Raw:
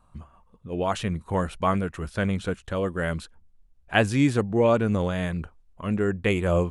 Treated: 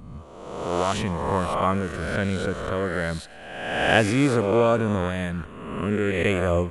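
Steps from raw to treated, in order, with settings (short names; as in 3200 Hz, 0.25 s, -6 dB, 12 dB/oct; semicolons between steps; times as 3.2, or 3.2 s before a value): spectral swells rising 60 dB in 1.27 s; thinning echo 0.111 s, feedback 74%, high-pass 910 Hz, level -20 dB; gain -1 dB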